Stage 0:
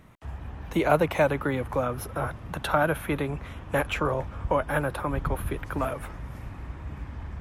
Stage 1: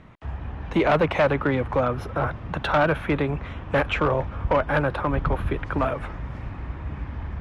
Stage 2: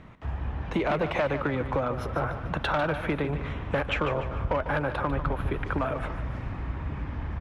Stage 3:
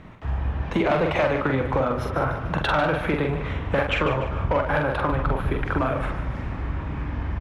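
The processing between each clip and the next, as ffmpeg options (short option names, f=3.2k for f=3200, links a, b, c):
-af "asoftclip=type=hard:threshold=-19.5dB,lowpass=3.8k,volume=5dB"
-af "acompressor=threshold=-24dB:ratio=6,aecho=1:1:148|296|444|592|740:0.299|0.131|0.0578|0.0254|0.0112"
-filter_complex "[0:a]asplit=2[a][b];[b]adelay=45,volume=-4dB[c];[a][c]amix=inputs=2:normalize=0,volume=3.5dB"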